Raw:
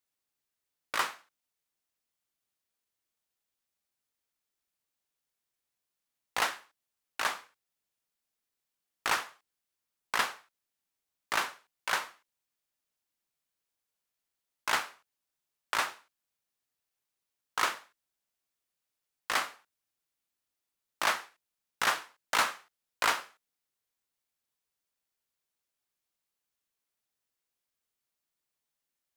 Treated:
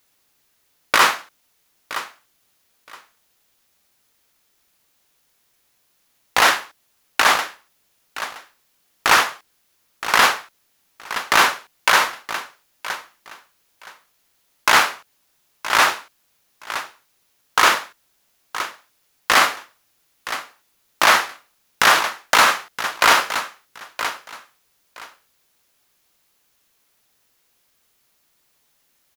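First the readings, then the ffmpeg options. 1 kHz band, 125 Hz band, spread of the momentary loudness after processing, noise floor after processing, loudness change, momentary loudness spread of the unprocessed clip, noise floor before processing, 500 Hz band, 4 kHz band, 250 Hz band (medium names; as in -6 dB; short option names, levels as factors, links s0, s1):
+16.0 dB, +15.5 dB, 17 LU, -65 dBFS, +13.5 dB, 15 LU, under -85 dBFS, +16.0 dB, +16.0 dB, +16.0 dB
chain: -filter_complex "[0:a]equalizer=f=8300:t=o:w=0.22:g=-4.5,asplit=2[s0][s1];[s1]aecho=0:1:970|1940:0.112|0.0213[s2];[s0][s2]amix=inputs=2:normalize=0,alimiter=level_in=14.1:limit=0.891:release=50:level=0:latency=1,volume=0.891"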